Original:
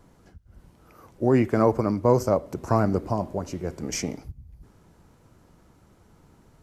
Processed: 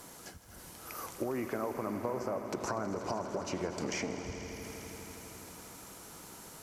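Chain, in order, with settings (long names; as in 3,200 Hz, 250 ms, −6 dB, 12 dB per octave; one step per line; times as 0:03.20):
brickwall limiter −18.5 dBFS, peak gain reduction 11 dB
RIAA equalisation recording
treble cut that deepens with the level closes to 1,800 Hz, closed at −28.5 dBFS
downward compressor, threshold −41 dBFS, peak gain reduction 13.5 dB
echo that builds up and dies away 81 ms, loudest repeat 5, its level −14.5 dB
level +8 dB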